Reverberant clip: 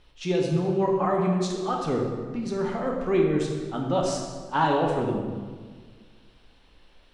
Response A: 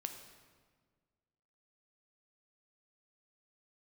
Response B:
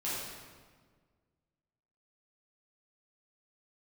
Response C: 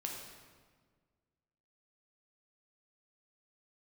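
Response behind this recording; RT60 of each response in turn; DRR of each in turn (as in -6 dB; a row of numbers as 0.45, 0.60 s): C; 1.6, 1.6, 1.6 s; 5.5, -9.5, -0.5 dB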